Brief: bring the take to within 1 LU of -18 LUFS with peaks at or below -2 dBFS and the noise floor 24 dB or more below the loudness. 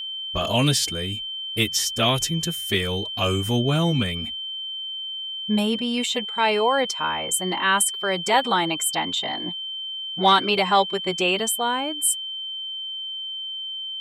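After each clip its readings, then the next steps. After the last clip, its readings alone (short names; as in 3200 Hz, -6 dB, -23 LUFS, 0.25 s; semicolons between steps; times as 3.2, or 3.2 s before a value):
steady tone 3100 Hz; tone level -29 dBFS; loudness -23.0 LUFS; peak -6.0 dBFS; loudness target -18.0 LUFS
-> notch 3100 Hz, Q 30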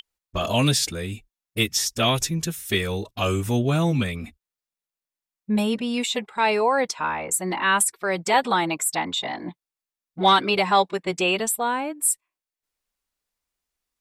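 steady tone none; loudness -23.0 LUFS; peak -6.0 dBFS; loudness target -18.0 LUFS
-> gain +5 dB; limiter -2 dBFS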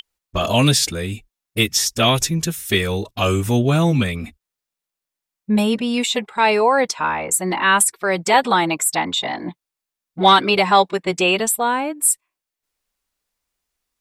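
loudness -18.0 LUFS; peak -2.0 dBFS; noise floor -86 dBFS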